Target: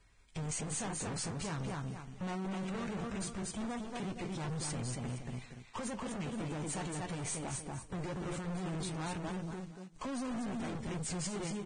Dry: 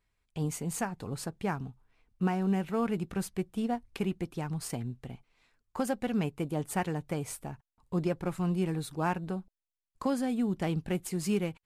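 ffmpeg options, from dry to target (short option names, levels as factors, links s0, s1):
-filter_complex "[0:a]asplit=2[s0][s1];[s1]acompressor=threshold=0.00891:ratio=16,volume=0.708[s2];[s0][s2]amix=inputs=2:normalize=0,alimiter=level_in=1.33:limit=0.0631:level=0:latency=1:release=41,volume=0.75,asplit=2[s3][s4];[s4]aecho=0:1:235|470|705:0.501|0.105|0.0221[s5];[s3][s5]amix=inputs=2:normalize=0,acrusher=bits=3:mode=log:mix=0:aa=0.000001,aeval=exprs='(tanh(158*val(0)+0.25)-tanh(0.25))/158':c=same,flanger=delay=7.2:depth=9.5:regen=-67:speed=0.2:shape=sinusoidal,volume=3.55" -ar 22050 -c:a libvorbis -b:a 16k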